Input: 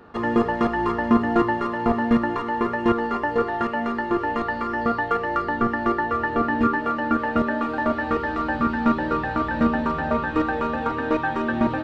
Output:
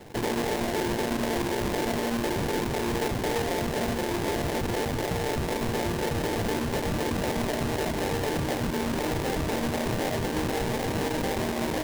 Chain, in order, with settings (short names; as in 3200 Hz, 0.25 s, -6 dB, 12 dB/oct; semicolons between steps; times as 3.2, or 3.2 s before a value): HPF 520 Hz 6 dB/oct; air absorption 220 m; in parallel at +0.5 dB: negative-ratio compressor -30 dBFS; on the sum: sample-rate reducer 1300 Hz, jitter 20%; limiter -19.5 dBFS, peak gain reduction 8.5 dB; gain -2 dB